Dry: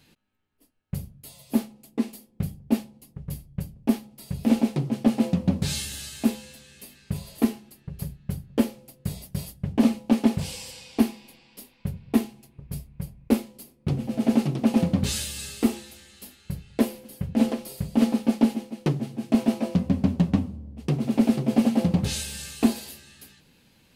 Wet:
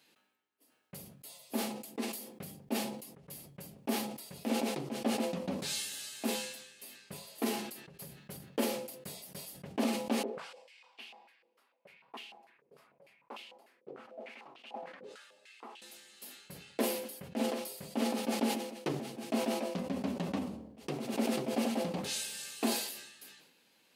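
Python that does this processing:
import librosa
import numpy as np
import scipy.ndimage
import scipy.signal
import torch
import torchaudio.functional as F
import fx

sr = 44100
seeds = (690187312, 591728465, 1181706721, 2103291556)

y = fx.filter_held_bandpass(x, sr, hz=6.7, low_hz=460.0, high_hz=2900.0, at=(10.23, 15.82))
y = scipy.signal.sosfilt(scipy.signal.butter(2, 380.0, 'highpass', fs=sr, output='sos'), y)
y = fx.sustainer(y, sr, db_per_s=59.0)
y = y * 10.0 ** (-5.5 / 20.0)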